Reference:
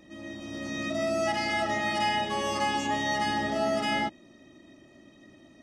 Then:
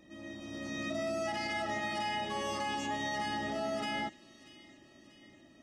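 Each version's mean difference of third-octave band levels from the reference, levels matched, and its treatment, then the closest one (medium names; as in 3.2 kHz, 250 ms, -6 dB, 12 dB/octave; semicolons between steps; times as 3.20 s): 2.0 dB: peak limiter -22 dBFS, peak gain reduction 5.5 dB; on a send: feedback echo behind a high-pass 637 ms, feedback 55%, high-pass 2.1 kHz, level -16.5 dB; on the sum: trim -5 dB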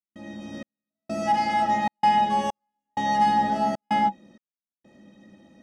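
11.5 dB: small resonant body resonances 200/510/830/1500 Hz, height 15 dB, ringing for 100 ms; trance gate ".xxx...xxxxx" 96 bpm -60 dB; trim -3 dB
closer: first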